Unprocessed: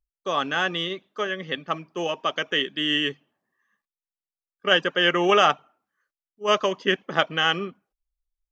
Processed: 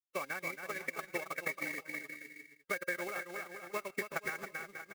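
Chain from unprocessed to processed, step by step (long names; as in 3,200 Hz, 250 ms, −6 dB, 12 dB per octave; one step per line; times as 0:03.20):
hearing-aid frequency compression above 2,000 Hz 4 to 1
downward compressor 8 to 1, threshold −24 dBFS, peak gain reduction 11.5 dB
floating-point word with a short mantissa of 2 bits
dead-zone distortion −42.5 dBFS
high-shelf EQ 2,100 Hz +9 dB
bouncing-ball delay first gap 470 ms, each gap 0.75×, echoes 5
phase-vocoder stretch with locked phases 0.58×
tuned comb filter 540 Hz, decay 0.3 s, harmonics odd, mix 70%
transient designer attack +8 dB, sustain −8 dB
level −4.5 dB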